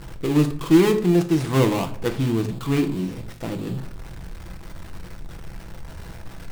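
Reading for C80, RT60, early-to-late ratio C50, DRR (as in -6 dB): 16.5 dB, 0.55 s, 12.5 dB, 5.5 dB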